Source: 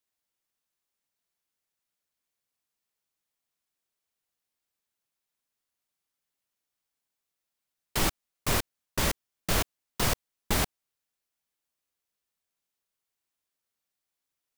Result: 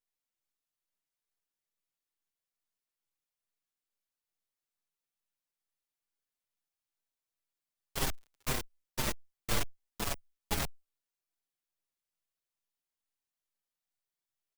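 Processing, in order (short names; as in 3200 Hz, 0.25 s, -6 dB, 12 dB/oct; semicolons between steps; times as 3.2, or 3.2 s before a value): 8.05–8.52 crackle 36/s -> 110/s -43 dBFS; half-wave rectifier; endless flanger 6.4 ms -2.3 Hz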